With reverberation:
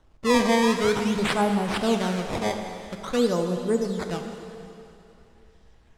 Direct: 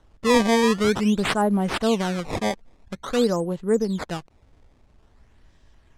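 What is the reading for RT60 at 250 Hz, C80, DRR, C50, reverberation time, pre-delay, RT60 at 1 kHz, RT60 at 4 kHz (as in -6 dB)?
2.7 s, 6.0 dB, 4.5 dB, 5.5 dB, 2.9 s, 6 ms, 3.0 s, 2.8 s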